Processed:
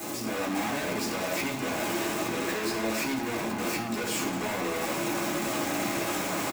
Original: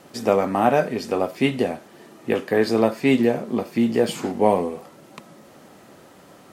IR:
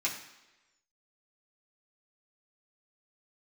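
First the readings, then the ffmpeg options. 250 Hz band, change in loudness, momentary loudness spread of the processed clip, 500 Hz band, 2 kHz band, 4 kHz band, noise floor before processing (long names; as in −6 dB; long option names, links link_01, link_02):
−8.0 dB, −8.0 dB, 2 LU, −11.0 dB, 0.0 dB, +1.0 dB, −49 dBFS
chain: -filter_complex "[0:a]aeval=exprs='val(0)+0.5*0.112*sgn(val(0))':channel_layout=same,highpass=frequency=430:poles=1,equalizer=frequency=2300:width=0.33:gain=-14,alimiter=limit=-18dB:level=0:latency=1,dynaudnorm=framelen=240:gausssize=3:maxgain=11.5dB,volume=27dB,asoftclip=hard,volume=-27dB,aecho=1:1:192:0.158[link_01];[1:a]atrim=start_sample=2205,atrim=end_sample=6174[link_02];[link_01][link_02]afir=irnorm=-1:irlink=0,volume=-6dB"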